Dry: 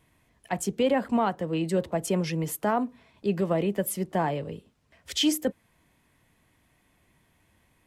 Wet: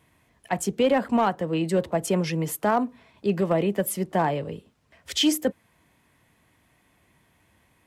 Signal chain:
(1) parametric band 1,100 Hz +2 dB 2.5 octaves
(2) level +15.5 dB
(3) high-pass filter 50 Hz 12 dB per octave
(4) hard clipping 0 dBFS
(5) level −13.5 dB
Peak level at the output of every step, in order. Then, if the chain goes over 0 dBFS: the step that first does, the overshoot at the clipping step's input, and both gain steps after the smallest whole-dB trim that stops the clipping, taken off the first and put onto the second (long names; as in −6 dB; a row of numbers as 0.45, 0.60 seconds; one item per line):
−12.5, +3.0, +3.0, 0.0, −13.5 dBFS
step 2, 3.0 dB
step 2 +12.5 dB, step 5 −10.5 dB